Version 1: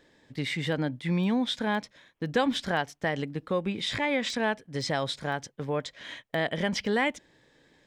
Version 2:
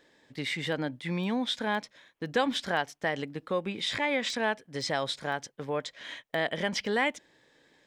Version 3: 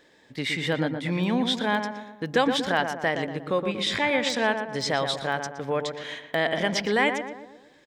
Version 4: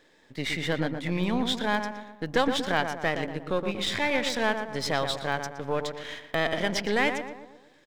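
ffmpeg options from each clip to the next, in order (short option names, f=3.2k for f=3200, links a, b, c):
-af "lowshelf=f=190:g=-10.5"
-filter_complex "[0:a]asplit=2[a][b];[b]adelay=118,lowpass=f=1.6k:p=1,volume=-6dB,asplit=2[c][d];[d]adelay=118,lowpass=f=1.6k:p=1,volume=0.52,asplit=2[e][f];[f]adelay=118,lowpass=f=1.6k:p=1,volume=0.52,asplit=2[g][h];[h]adelay=118,lowpass=f=1.6k:p=1,volume=0.52,asplit=2[i][j];[j]adelay=118,lowpass=f=1.6k:p=1,volume=0.52,asplit=2[k][l];[l]adelay=118,lowpass=f=1.6k:p=1,volume=0.52[m];[a][c][e][g][i][k][m]amix=inputs=7:normalize=0,volume=4.5dB"
-af "aeval=exprs='if(lt(val(0),0),0.447*val(0),val(0))':c=same"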